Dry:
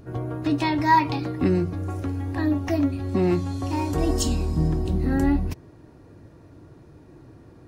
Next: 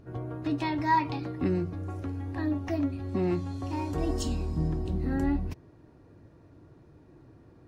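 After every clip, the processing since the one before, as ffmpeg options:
-af "highshelf=f=6.7k:g=-8.5,volume=-6.5dB"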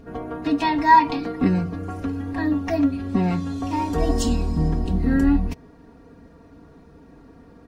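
-af "aecho=1:1:4.3:0.89,volume=6.5dB"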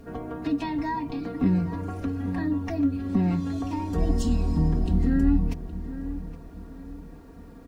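-filter_complex "[0:a]acrossover=split=290[a][b];[b]acompressor=threshold=-35dB:ratio=3[c];[a][c]amix=inputs=2:normalize=0,acrusher=bits=10:mix=0:aa=0.000001,asplit=2[d][e];[e]adelay=817,lowpass=f=2.1k:p=1,volume=-12.5dB,asplit=2[f][g];[g]adelay=817,lowpass=f=2.1k:p=1,volume=0.39,asplit=2[h][i];[i]adelay=817,lowpass=f=2.1k:p=1,volume=0.39,asplit=2[j][k];[k]adelay=817,lowpass=f=2.1k:p=1,volume=0.39[l];[d][f][h][j][l]amix=inputs=5:normalize=0,volume=-1dB"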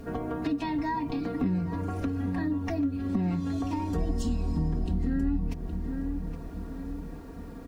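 -af "acompressor=threshold=-33dB:ratio=2.5,volume=4dB"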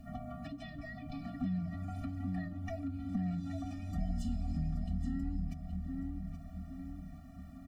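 -filter_complex "[0:a]asplit=2[a][b];[b]aecho=0:1:828:0.282[c];[a][c]amix=inputs=2:normalize=0,afftfilt=real='re*eq(mod(floor(b*sr/1024/280),2),0)':imag='im*eq(mod(floor(b*sr/1024/280),2),0)':win_size=1024:overlap=0.75,volume=-7dB"

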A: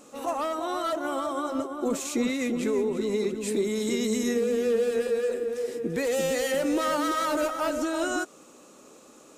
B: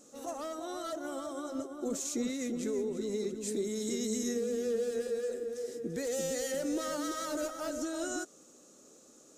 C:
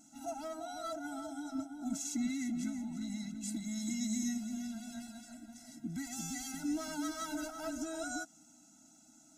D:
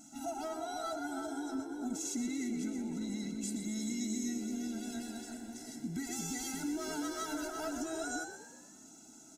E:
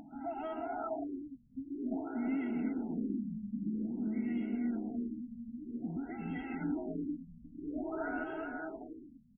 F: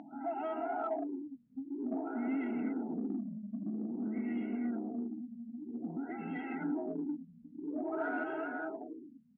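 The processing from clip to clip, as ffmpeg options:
-af "equalizer=f=1k:t=o:w=0.67:g=-9,equalizer=f=2.5k:t=o:w=0.67:g=-8,equalizer=f=6.3k:t=o:w=0.67:g=7,volume=-7dB"
-af "afftfilt=real='re*eq(mod(floor(b*sr/1024/320),2),0)':imag='im*eq(mod(floor(b*sr/1024/320),2),0)':win_size=1024:overlap=0.75"
-filter_complex "[0:a]acompressor=threshold=-43dB:ratio=2.5,asplit=2[a][b];[b]asplit=5[c][d][e][f][g];[c]adelay=122,afreqshift=69,volume=-9.5dB[h];[d]adelay=244,afreqshift=138,volume=-16.2dB[i];[e]adelay=366,afreqshift=207,volume=-23dB[j];[f]adelay=488,afreqshift=276,volume=-29.7dB[k];[g]adelay=610,afreqshift=345,volume=-36.5dB[l];[h][i][j][k][l]amix=inputs=5:normalize=0[m];[a][m]amix=inputs=2:normalize=0,volume=5.5dB"
-af "aecho=1:1:410|738|1000|1210|1378:0.631|0.398|0.251|0.158|0.1,acompressor=mode=upward:threshold=-42dB:ratio=2.5,afftfilt=real='re*lt(b*sr/1024,240*pow(3300/240,0.5+0.5*sin(2*PI*0.51*pts/sr)))':imag='im*lt(b*sr/1024,240*pow(3300/240,0.5+0.5*sin(2*PI*0.51*pts/sr)))':win_size=1024:overlap=0.75"
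-filter_complex "[0:a]asplit=2[a][b];[b]asoftclip=type=tanh:threshold=-35dB,volume=-6dB[c];[a][c]amix=inputs=2:normalize=0,highpass=250,lowpass=2.6k"

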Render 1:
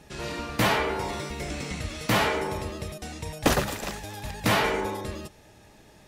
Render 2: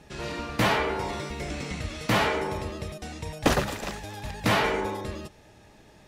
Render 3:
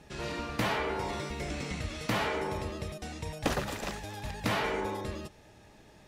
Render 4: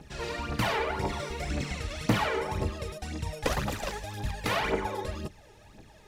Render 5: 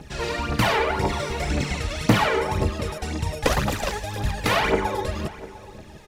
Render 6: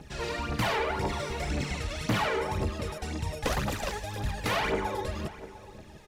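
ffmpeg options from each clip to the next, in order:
-af "highshelf=f=8.8k:g=-8.5"
-af "acompressor=threshold=-26dB:ratio=2.5,volume=-2.5dB"
-af "aphaser=in_gain=1:out_gain=1:delay=2.5:decay=0.62:speed=1.9:type=triangular"
-filter_complex "[0:a]asplit=2[a][b];[b]adelay=699.7,volume=-17dB,highshelf=f=4k:g=-15.7[c];[a][c]amix=inputs=2:normalize=0,volume=7.5dB"
-af "asoftclip=type=tanh:threshold=-15dB,volume=-5.5dB"

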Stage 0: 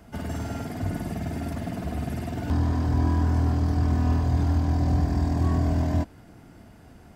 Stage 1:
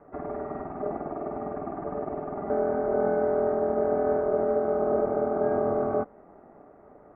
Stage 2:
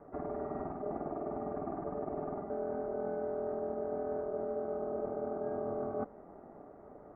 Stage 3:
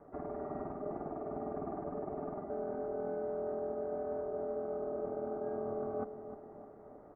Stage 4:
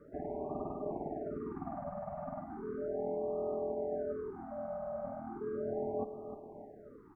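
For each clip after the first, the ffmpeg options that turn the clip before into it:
-af "lowpass=f=1.2k:w=0.5412,lowpass=f=1.2k:w=1.3066,aeval=exprs='val(0)*sin(2*PI*510*n/s)':c=same"
-af "highshelf=f=2k:g=-10.5,areverse,acompressor=threshold=-34dB:ratio=6,areverse"
-filter_complex "[0:a]asplit=2[a][b];[b]adelay=306,lowpass=f=1.1k:p=1,volume=-9.5dB,asplit=2[c][d];[d]adelay=306,lowpass=f=1.1k:p=1,volume=0.52,asplit=2[e][f];[f]adelay=306,lowpass=f=1.1k:p=1,volume=0.52,asplit=2[g][h];[h]adelay=306,lowpass=f=1.1k:p=1,volume=0.52,asplit=2[i][j];[j]adelay=306,lowpass=f=1.1k:p=1,volume=0.52,asplit=2[k][l];[l]adelay=306,lowpass=f=1.1k:p=1,volume=0.52[m];[a][c][e][g][i][k][m]amix=inputs=7:normalize=0,volume=-2.5dB"
-af "afftfilt=real='re*(1-between(b*sr/1024,340*pow(1800/340,0.5+0.5*sin(2*PI*0.36*pts/sr))/1.41,340*pow(1800/340,0.5+0.5*sin(2*PI*0.36*pts/sr))*1.41))':imag='im*(1-between(b*sr/1024,340*pow(1800/340,0.5+0.5*sin(2*PI*0.36*pts/sr))/1.41,340*pow(1800/340,0.5+0.5*sin(2*PI*0.36*pts/sr))*1.41))':win_size=1024:overlap=0.75,volume=1.5dB"

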